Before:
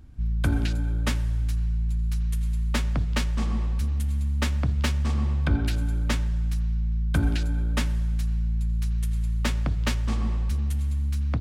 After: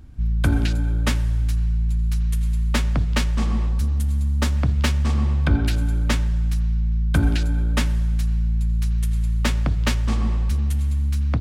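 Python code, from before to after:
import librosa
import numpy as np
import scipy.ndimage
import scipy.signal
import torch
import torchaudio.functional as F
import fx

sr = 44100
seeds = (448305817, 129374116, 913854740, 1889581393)

y = fx.peak_eq(x, sr, hz=2400.0, db=-5.0, octaves=1.1, at=(3.69, 4.57))
y = y * 10.0 ** (4.5 / 20.0)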